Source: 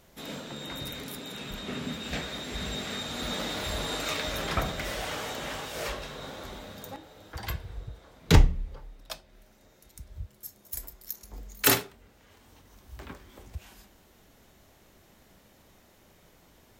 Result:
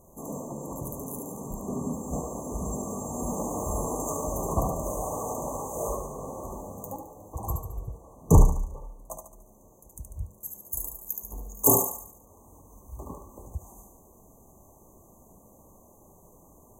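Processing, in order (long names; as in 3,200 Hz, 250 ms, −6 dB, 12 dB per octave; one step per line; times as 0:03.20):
sine wavefolder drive 3 dB, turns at −5 dBFS
linear-phase brick-wall band-stop 1,200–6,000 Hz
feedback echo with a high-pass in the loop 72 ms, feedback 49%, high-pass 420 Hz, level −4.5 dB
level −3 dB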